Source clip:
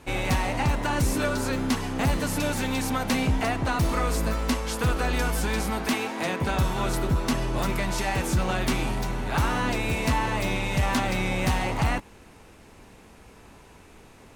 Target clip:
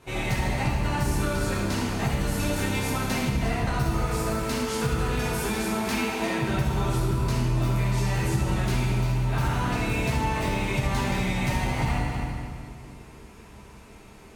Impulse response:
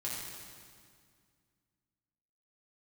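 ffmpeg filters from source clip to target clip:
-filter_complex "[1:a]atrim=start_sample=2205,asetrate=48510,aresample=44100[s0];[0:a][s0]afir=irnorm=-1:irlink=0,acompressor=threshold=0.0708:ratio=2.5"

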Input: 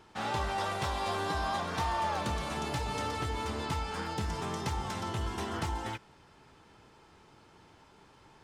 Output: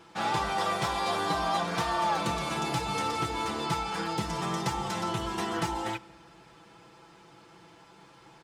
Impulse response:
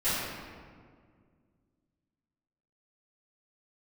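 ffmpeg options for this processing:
-filter_complex "[0:a]highpass=f=110:p=1,aecho=1:1:6:0.7,asplit=2[s0][s1];[1:a]atrim=start_sample=2205[s2];[s1][s2]afir=irnorm=-1:irlink=0,volume=0.0237[s3];[s0][s3]amix=inputs=2:normalize=0,volume=1.41"

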